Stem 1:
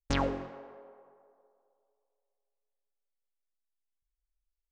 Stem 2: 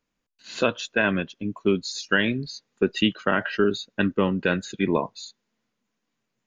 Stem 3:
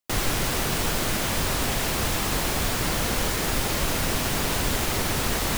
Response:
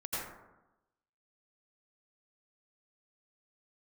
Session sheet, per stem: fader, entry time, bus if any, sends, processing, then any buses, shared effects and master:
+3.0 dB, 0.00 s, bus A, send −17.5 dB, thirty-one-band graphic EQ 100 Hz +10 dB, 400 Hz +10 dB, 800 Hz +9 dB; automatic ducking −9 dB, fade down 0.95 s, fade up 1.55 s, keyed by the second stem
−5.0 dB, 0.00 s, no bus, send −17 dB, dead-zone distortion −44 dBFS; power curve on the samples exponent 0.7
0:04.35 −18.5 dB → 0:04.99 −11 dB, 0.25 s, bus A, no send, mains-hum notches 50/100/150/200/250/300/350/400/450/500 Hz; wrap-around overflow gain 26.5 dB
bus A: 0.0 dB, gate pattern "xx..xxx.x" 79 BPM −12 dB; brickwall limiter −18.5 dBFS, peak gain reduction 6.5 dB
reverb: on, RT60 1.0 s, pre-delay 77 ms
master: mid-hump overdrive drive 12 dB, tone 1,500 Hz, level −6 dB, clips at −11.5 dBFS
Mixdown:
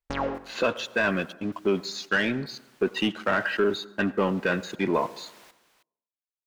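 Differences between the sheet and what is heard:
stem 1: missing thirty-one-band graphic EQ 100 Hz +10 dB, 400 Hz +10 dB, 800 Hz +9 dB
stem 3 −18.5 dB → −26.5 dB
reverb return −6.5 dB

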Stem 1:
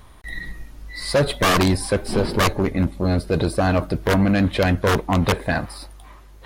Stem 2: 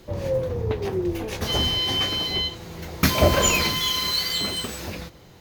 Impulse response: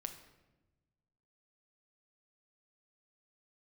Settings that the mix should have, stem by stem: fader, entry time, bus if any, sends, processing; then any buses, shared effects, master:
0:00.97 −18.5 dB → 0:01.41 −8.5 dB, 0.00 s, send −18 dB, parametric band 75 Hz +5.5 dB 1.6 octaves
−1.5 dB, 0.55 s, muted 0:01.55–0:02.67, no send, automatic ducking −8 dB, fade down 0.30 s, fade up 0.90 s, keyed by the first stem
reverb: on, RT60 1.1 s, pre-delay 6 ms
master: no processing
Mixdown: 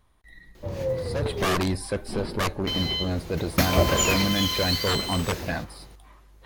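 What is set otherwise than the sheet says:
stem 1: missing parametric band 75 Hz +5.5 dB 1.6 octaves
stem 2 −1.5 dB → +5.0 dB

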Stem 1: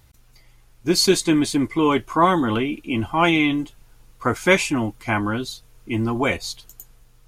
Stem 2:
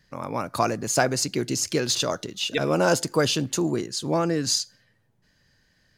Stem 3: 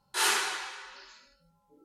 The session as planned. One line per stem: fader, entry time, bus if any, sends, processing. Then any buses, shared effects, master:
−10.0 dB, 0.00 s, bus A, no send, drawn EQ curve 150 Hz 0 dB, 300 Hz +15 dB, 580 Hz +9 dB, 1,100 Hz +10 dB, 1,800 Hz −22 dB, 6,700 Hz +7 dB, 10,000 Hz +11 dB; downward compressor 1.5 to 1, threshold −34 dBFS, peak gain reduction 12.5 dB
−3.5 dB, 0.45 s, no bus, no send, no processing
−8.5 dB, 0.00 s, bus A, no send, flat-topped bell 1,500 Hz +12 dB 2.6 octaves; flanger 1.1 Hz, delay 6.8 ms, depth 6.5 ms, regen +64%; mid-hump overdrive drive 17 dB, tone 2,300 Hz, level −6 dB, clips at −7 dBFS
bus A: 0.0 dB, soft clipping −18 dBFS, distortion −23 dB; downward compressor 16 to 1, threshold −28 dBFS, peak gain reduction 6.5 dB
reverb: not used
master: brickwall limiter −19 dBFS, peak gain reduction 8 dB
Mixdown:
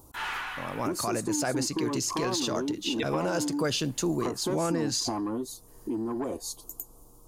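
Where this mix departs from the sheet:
stem 1 −10.0 dB → −3.0 dB
stem 3 −8.5 dB → −16.5 dB

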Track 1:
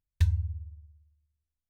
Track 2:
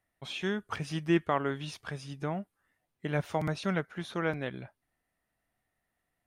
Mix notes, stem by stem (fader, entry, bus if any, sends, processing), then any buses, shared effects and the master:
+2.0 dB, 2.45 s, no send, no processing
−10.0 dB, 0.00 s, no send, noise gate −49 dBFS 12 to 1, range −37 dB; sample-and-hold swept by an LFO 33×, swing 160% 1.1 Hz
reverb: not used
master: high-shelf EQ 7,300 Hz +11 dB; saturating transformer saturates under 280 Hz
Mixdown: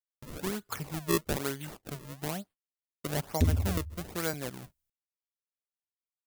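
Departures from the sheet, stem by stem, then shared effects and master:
stem 1: entry 2.45 s → 3.20 s
stem 2 −10.0 dB → −2.5 dB

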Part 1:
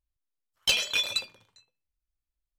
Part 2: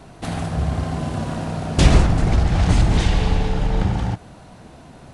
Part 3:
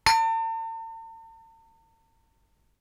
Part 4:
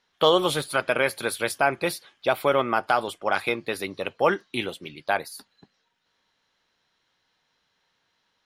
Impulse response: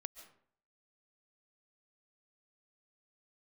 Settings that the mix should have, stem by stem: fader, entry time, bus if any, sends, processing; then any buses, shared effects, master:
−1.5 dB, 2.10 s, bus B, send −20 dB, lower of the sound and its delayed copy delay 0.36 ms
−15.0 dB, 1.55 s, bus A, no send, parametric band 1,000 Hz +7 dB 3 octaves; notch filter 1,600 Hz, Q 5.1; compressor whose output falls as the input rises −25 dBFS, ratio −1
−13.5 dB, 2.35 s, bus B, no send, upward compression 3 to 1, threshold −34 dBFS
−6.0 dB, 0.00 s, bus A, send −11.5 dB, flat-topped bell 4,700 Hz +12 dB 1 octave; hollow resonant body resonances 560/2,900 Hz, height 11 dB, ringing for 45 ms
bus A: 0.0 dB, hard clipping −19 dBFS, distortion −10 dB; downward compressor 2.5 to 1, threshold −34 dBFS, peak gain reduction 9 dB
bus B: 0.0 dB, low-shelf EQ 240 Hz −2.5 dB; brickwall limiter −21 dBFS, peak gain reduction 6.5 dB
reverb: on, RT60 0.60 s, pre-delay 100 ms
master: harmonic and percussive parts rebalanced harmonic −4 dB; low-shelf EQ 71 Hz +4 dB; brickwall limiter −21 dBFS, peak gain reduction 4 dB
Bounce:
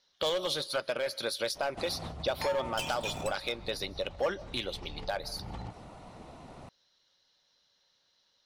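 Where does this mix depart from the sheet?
stem 1 −1.5 dB → −11.0 dB
stem 3: missing upward compression 3 to 1, threshold −34 dBFS

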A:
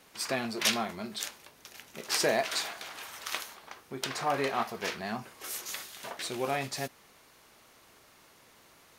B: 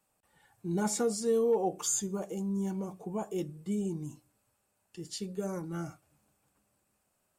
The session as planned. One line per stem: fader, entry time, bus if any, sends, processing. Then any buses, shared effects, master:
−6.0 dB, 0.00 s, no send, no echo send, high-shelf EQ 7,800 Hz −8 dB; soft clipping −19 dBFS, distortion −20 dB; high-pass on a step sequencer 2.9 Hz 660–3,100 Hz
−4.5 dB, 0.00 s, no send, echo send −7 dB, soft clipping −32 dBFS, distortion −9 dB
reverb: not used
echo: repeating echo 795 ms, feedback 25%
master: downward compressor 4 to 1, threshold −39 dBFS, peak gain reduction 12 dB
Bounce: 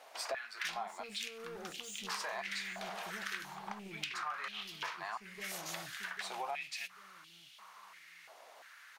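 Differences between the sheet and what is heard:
stem A −6.0 dB → 0.0 dB
stem B −4.5 dB → −12.5 dB

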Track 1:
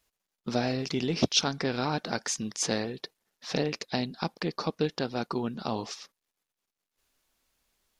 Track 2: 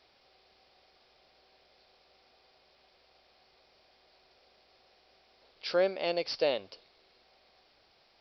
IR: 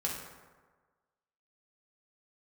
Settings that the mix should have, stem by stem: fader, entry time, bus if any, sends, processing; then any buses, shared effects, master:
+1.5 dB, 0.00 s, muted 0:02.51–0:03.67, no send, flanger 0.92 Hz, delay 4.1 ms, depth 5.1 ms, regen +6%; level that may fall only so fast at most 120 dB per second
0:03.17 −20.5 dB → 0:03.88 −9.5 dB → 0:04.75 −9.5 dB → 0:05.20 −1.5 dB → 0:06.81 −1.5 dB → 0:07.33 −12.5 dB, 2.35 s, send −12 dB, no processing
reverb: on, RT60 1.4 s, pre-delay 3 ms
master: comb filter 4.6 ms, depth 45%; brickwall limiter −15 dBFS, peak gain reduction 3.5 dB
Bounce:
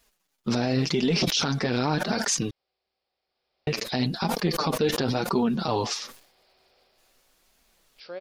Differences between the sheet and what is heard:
stem 1 +1.5 dB → +12.5 dB
master: missing comb filter 4.6 ms, depth 45%

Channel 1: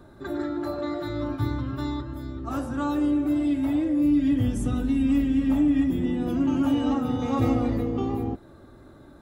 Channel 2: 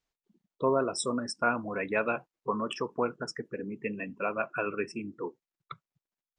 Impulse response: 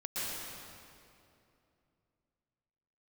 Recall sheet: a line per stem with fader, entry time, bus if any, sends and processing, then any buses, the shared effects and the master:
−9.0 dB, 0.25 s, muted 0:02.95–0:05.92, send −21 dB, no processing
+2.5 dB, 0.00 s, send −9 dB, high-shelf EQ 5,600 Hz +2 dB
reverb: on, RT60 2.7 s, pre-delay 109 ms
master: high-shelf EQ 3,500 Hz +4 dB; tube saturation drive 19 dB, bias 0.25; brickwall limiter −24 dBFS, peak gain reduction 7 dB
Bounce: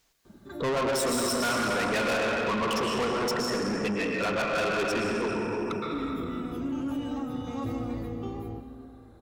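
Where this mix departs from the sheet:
stem 2 +2.5 dB → +12.0 dB
reverb return +8.0 dB

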